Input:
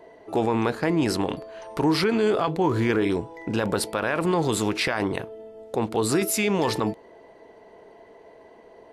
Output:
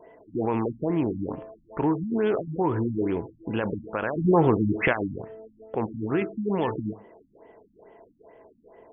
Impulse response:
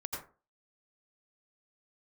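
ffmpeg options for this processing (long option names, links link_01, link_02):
-filter_complex "[0:a]asettb=1/sr,asplit=3[link_01][link_02][link_03];[link_01]atrim=end=4.164[link_04];[link_02]atrim=start=4.16:end=4.93,asetpts=PTS-STARTPTS,afade=type=in:duration=0.004:curve=qsin,afade=type=out:start_time=0.766:duration=0.004:curve=qsin,acontrast=78[link_05];[link_03]atrim=start=4.926[link_06];[link_04][link_05]acrossfade=duration=0.004:curve1=hsin:curve2=qsin[link_07];[link_07][link_06]acrossfade=duration=0.004:curve1=qsin:curve2=hsin,asplit=2[link_08][link_09];[1:a]atrim=start_sample=2205[link_10];[link_09][link_10]afir=irnorm=-1:irlink=0,volume=-19dB[link_11];[link_08][link_11]amix=inputs=2:normalize=0,afftfilt=real='re*lt(b*sr/1024,280*pow(3500/280,0.5+0.5*sin(2*PI*2.3*pts/sr)))':imag='im*lt(b*sr/1024,280*pow(3500/280,0.5+0.5*sin(2*PI*2.3*pts/sr)))':win_size=1024:overlap=0.75,volume=-3dB"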